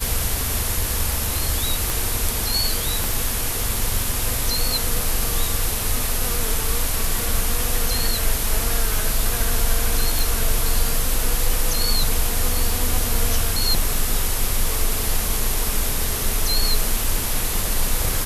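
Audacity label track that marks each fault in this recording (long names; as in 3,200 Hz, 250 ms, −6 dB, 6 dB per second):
1.900000	1.900000	click
3.040000	3.040000	click
10.190000	10.190000	click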